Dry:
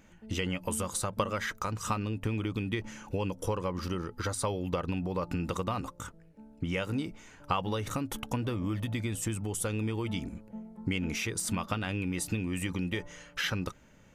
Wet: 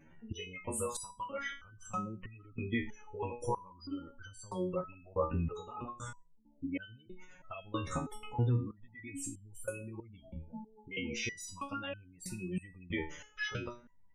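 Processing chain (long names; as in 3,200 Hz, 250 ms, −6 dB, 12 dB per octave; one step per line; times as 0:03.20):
flanger 0.41 Hz, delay 6.9 ms, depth 8.5 ms, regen +1%
gate on every frequency bin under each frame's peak −20 dB strong
step-sequenced resonator 3.1 Hz 79–1,500 Hz
level +11.5 dB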